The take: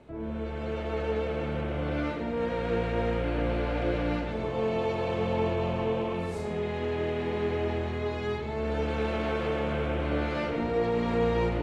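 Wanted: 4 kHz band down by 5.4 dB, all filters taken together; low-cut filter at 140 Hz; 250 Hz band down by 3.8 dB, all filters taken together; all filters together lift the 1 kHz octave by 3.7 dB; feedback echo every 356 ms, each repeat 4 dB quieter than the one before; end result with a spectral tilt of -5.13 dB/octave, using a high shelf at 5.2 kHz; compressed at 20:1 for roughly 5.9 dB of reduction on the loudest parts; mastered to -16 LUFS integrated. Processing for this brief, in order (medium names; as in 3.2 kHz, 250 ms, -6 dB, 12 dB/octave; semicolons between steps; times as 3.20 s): high-pass 140 Hz; peaking EQ 250 Hz -4.5 dB; peaking EQ 1 kHz +5.5 dB; peaking EQ 4 kHz -5.5 dB; treble shelf 5.2 kHz -7 dB; compression 20:1, threshold -29 dBFS; feedback delay 356 ms, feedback 63%, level -4 dB; trim +16 dB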